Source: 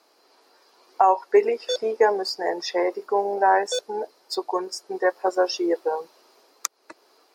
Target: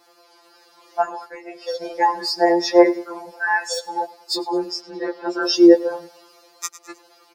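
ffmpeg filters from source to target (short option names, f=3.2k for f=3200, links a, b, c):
-filter_complex "[0:a]aecho=1:1:104|208|312:0.0891|0.0374|0.0157,asplit=3[a][b][c];[a]afade=t=out:st=1.27:d=0.02[d];[b]acompressor=threshold=-32dB:ratio=3,afade=t=in:st=1.27:d=0.02,afade=t=out:st=1.81:d=0.02[e];[c]afade=t=in:st=1.81:d=0.02[f];[d][e][f]amix=inputs=3:normalize=0,asplit=3[g][h][i];[g]afade=t=out:st=3.28:d=0.02[j];[h]highpass=f=1.4k:p=1,afade=t=in:st=3.28:d=0.02,afade=t=out:st=3.87:d=0.02[k];[i]afade=t=in:st=3.87:d=0.02[l];[j][k][l]amix=inputs=3:normalize=0,asettb=1/sr,asplit=3[m][n][o];[m]atrim=end=4.714[p];[n]atrim=start=4.71:end=5.43,asetpts=PTS-STARTPTS,afade=t=in:d=0.004:c=qsin,afade=t=out:st=0.716:d=0.004:c=qsin,highshelf=f=6k:t=q:w=1.5:g=-13[q];[o]atrim=start=5.426[r];[p][q]acrossfade=d=0.004:c1=hsin:c2=qsin[s];[s][r]acrossfade=d=0.004:c1=qsin:c2=hsin,alimiter=level_in=10dB:limit=-1dB:release=50:level=0:latency=1,afftfilt=real='re*2.83*eq(mod(b,8),0)':imag='im*2.83*eq(mod(b,8),0)':win_size=2048:overlap=0.75,volume=-1.5dB"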